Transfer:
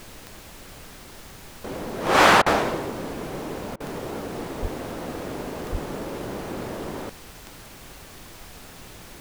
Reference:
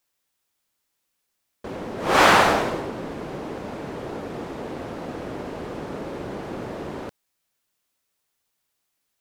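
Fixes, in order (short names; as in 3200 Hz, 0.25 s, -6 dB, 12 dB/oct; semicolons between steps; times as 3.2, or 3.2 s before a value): de-click; de-plosive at 4.61/5.71; interpolate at 2.42/3.76, 41 ms; noise print and reduce 30 dB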